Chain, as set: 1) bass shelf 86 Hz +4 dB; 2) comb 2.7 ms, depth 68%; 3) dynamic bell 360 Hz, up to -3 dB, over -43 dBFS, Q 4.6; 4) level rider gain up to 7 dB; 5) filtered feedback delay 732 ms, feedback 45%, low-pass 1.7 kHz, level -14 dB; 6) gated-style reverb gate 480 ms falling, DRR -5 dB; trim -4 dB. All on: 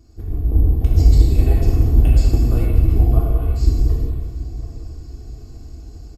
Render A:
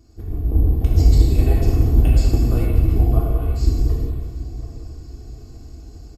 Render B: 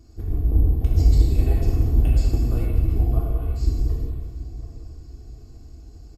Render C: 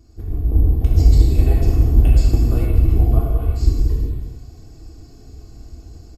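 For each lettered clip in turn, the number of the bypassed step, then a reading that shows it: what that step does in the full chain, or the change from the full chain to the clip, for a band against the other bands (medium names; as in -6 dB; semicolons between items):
1, 125 Hz band -2.0 dB; 4, momentary loudness spread change -2 LU; 5, momentary loudness spread change -8 LU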